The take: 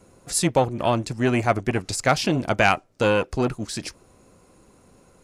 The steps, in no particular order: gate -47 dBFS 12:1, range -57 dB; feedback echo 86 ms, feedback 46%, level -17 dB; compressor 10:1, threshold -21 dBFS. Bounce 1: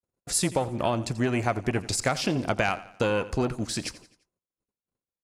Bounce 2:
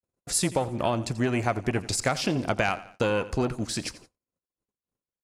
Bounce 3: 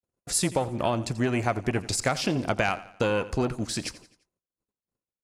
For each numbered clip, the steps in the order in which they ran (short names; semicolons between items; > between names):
gate > compressor > feedback echo; compressor > feedback echo > gate; compressor > gate > feedback echo